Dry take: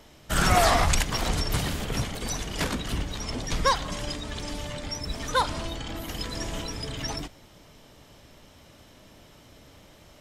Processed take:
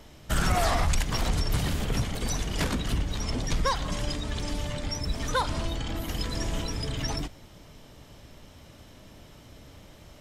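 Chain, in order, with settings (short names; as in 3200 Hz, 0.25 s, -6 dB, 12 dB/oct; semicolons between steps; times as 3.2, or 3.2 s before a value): low shelf 190 Hz +6 dB; compressor 2:1, threshold -23 dBFS, peak gain reduction 6.5 dB; soft clip -13.5 dBFS, distortion -25 dB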